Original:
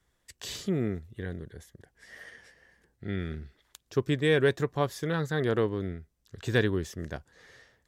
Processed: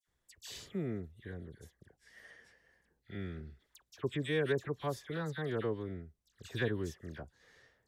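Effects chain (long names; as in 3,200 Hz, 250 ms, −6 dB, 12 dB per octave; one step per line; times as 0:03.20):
all-pass dispersion lows, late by 72 ms, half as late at 2,000 Hz
level −8.5 dB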